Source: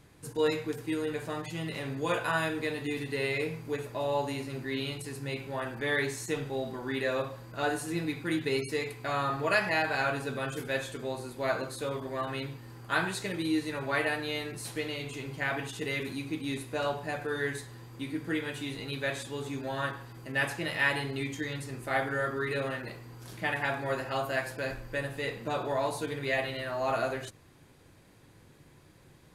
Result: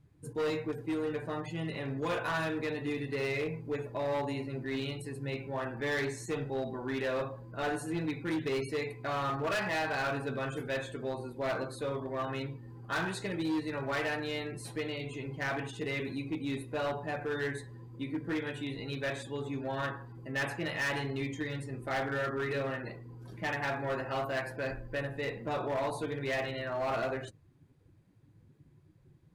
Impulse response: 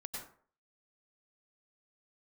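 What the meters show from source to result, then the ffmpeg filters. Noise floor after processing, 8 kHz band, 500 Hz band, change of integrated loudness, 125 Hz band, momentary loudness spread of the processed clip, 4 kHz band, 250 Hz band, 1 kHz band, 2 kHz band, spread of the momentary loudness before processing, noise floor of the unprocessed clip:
-61 dBFS, -6.0 dB, -1.5 dB, -2.5 dB, -0.5 dB, 6 LU, -4.5 dB, -1.0 dB, -2.5 dB, -4.0 dB, 8 LU, -57 dBFS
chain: -af "afftdn=nr=15:nf=-48,highshelf=f=2500:g=-5.5,asoftclip=type=hard:threshold=0.0376"

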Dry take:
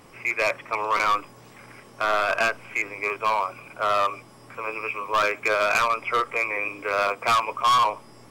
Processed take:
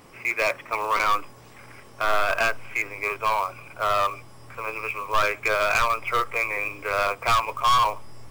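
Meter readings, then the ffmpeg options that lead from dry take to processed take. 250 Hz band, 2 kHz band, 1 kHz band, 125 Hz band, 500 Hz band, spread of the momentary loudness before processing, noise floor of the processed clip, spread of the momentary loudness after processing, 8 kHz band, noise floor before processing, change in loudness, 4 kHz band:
-2.5 dB, 0.0 dB, -0.5 dB, +5.0 dB, -1.0 dB, 9 LU, -48 dBFS, 9 LU, +1.0 dB, -49 dBFS, -0.5 dB, 0.0 dB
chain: -af "acrusher=bits=5:mode=log:mix=0:aa=0.000001,asubboost=boost=7.5:cutoff=81"

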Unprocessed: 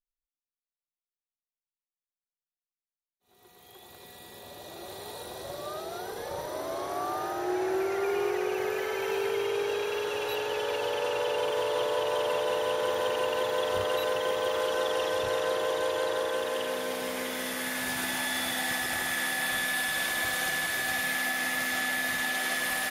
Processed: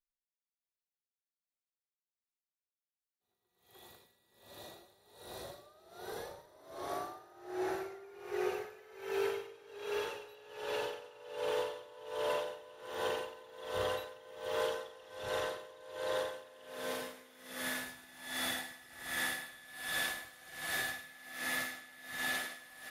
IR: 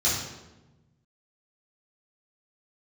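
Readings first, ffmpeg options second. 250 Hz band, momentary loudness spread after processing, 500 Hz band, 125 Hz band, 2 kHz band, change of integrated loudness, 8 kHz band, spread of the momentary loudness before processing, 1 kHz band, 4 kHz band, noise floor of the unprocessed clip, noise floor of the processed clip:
-10.0 dB, 14 LU, -10.5 dB, -9.0 dB, -10.5 dB, -10.0 dB, -10.5 dB, 10 LU, -10.5 dB, -10.0 dB, under -85 dBFS, under -85 dBFS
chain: -filter_complex "[0:a]asplit=2[s0][s1];[1:a]atrim=start_sample=2205,asetrate=24696,aresample=44100[s2];[s1][s2]afir=irnorm=-1:irlink=0,volume=0.0501[s3];[s0][s3]amix=inputs=2:normalize=0,aeval=exprs='val(0)*pow(10,-22*(0.5-0.5*cos(2*PI*1.3*n/s))/20)':c=same,volume=0.596"

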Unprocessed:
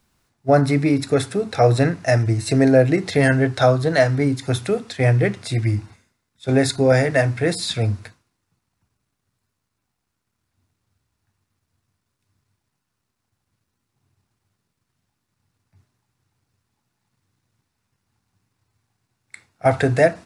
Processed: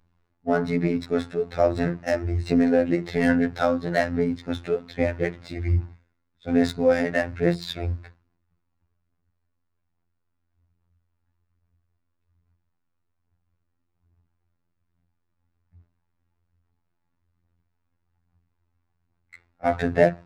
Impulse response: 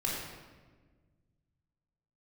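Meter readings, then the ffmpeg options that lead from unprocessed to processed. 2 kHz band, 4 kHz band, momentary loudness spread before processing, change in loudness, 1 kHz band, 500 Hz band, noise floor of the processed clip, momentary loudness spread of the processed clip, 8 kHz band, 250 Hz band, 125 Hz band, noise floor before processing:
-6.0 dB, -9.0 dB, 8 LU, -5.5 dB, -5.5 dB, -5.0 dB, -75 dBFS, 9 LU, -15.5 dB, -3.0 dB, -10.5 dB, -77 dBFS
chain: -af "lowshelf=f=120:g=7.5,bandreject=f=60:t=h:w=6,bandreject=f=120:t=h:w=6,bandreject=f=180:t=h:w=6,bandreject=f=240:t=h:w=6,bandreject=f=300:t=h:w=6,bandreject=f=360:t=h:w=6,adynamicsmooth=sensitivity=1.5:basefreq=2700,aphaser=in_gain=1:out_gain=1:delay=3.7:decay=0.39:speed=1.2:type=sinusoidal,afftfilt=real='hypot(re,im)*cos(PI*b)':imag='0':win_size=2048:overlap=0.75,volume=0.708"

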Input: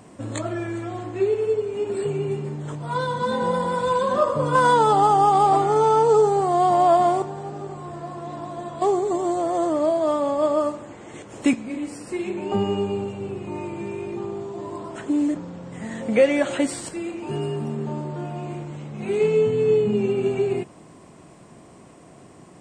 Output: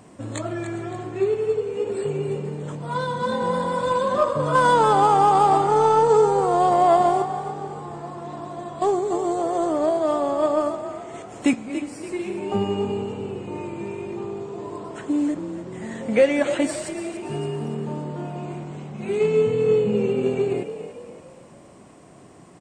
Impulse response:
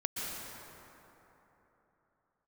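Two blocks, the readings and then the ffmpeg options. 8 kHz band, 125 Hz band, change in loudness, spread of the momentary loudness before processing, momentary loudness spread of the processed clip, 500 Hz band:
0.0 dB, -0.5 dB, 0.0 dB, 17 LU, 17 LU, 0.0 dB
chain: -filter_complex "[0:a]aeval=exprs='0.562*(cos(1*acos(clip(val(0)/0.562,-1,1)))-cos(1*PI/2))+0.01*(cos(7*acos(clip(val(0)/0.562,-1,1)))-cos(7*PI/2))':c=same,asplit=6[s0][s1][s2][s3][s4][s5];[s1]adelay=285,afreqshift=40,volume=0.282[s6];[s2]adelay=570,afreqshift=80,volume=0.124[s7];[s3]adelay=855,afreqshift=120,volume=0.0543[s8];[s4]adelay=1140,afreqshift=160,volume=0.024[s9];[s5]adelay=1425,afreqshift=200,volume=0.0106[s10];[s0][s6][s7][s8][s9][s10]amix=inputs=6:normalize=0"

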